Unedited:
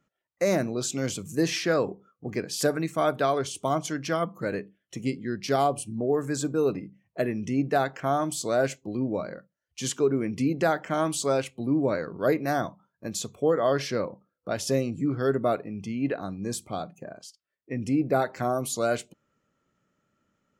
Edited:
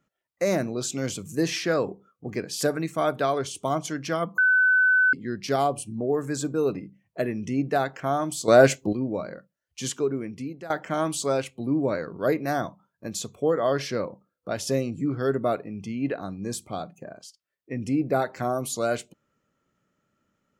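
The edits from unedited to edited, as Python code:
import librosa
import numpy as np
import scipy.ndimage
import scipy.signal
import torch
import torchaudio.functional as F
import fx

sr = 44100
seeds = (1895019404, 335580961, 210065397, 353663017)

y = fx.edit(x, sr, fx.bleep(start_s=4.38, length_s=0.75, hz=1510.0, db=-16.0),
    fx.clip_gain(start_s=8.48, length_s=0.45, db=9.5),
    fx.fade_out_to(start_s=9.83, length_s=0.87, floor_db=-18.5), tone=tone)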